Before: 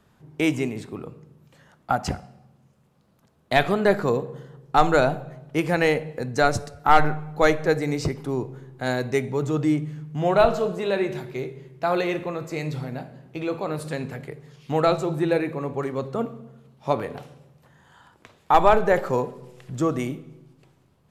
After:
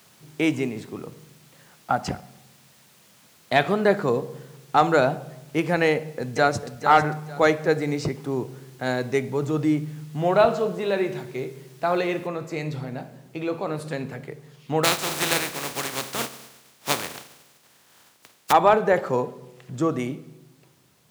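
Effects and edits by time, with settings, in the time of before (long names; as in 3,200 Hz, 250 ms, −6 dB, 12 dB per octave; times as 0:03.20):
0:05.91–0:06.68: delay throw 450 ms, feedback 25%, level −9 dB
0:12.27: noise floor change −53 dB −61 dB
0:14.83–0:18.51: compressing power law on the bin magnitudes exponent 0.25
whole clip: high-pass filter 110 Hz; high-shelf EQ 10,000 Hz −7.5 dB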